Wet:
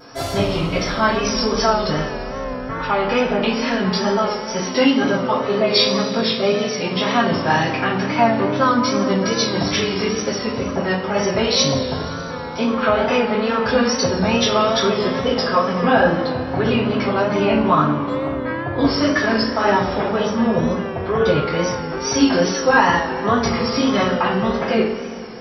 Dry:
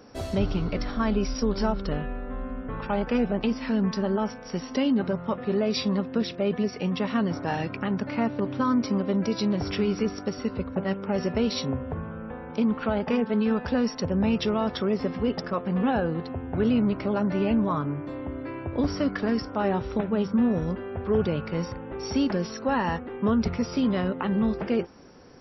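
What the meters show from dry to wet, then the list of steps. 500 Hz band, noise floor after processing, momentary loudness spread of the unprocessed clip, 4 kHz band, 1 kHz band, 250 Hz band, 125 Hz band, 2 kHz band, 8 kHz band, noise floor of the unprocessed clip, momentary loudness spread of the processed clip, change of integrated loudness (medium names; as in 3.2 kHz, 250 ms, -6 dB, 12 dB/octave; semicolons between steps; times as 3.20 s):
+9.5 dB, -27 dBFS, 8 LU, +15.0 dB, +13.0 dB, +4.5 dB, +5.5 dB, +14.5 dB, no reading, -39 dBFS, 7 LU, +8.5 dB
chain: bass shelf 470 Hz -10 dB; band-stop 2.7 kHz, Q 17; two-slope reverb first 0.39 s, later 2.8 s, from -15 dB, DRR -9.5 dB; wow and flutter 58 cents; trim +5.5 dB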